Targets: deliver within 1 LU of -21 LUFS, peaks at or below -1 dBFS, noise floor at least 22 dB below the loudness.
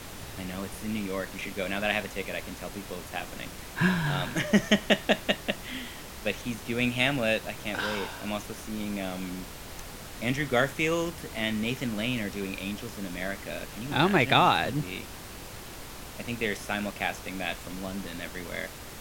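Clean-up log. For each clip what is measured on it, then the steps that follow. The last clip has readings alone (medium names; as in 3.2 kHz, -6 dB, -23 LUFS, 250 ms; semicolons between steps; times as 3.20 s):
noise floor -43 dBFS; noise floor target -52 dBFS; loudness -29.5 LUFS; peak level -5.5 dBFS; loudness target -21.0 LUFS
-> noise print and reduce 9 dB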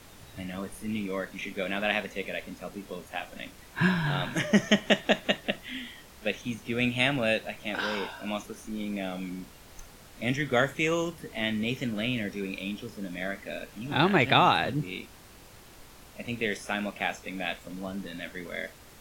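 noise floor -51 dBFS; noise floor target -52 dBFS
-> noise print and reduce 6 dB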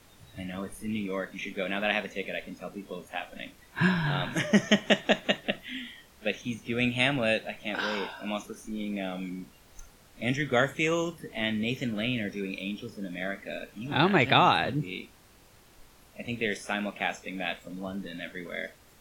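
noise floor -57 dBFS; loudness -29.5 LUFS; peak level -5.5 dBFS; loudness target -21.0 LUFS
-> trim +8.5 dB; peak limiter -1 dBFS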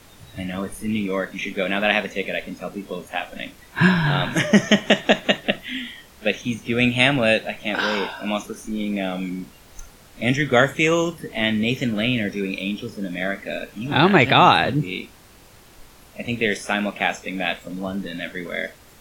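loudness -21.5 LUFS; peak level -1.0 dBFS; noise floor -49 dBFS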